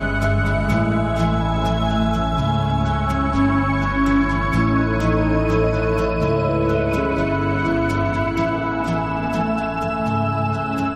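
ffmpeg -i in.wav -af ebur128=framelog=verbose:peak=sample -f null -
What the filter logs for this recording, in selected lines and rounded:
Integrated loudness:
  I:         -19.7 LUFS
  Threshold: -29.7 LUFS
Loudness range:
  LRA:         2.2 LU
  Threshold: -39.5 LUFS
  LRA low:   -20.9 LUFS
  LRA high:  -18.7 LUFS
Sample peak:
  Peak:       -6.2 dBFS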